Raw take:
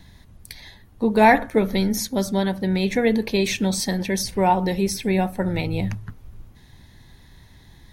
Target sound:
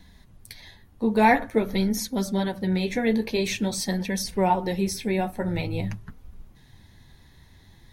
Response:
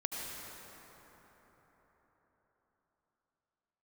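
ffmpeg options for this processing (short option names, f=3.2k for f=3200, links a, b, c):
-af "flanger=delay=4:depth=9.9:regen=-34:speed=0.48:shape=sinusoidal"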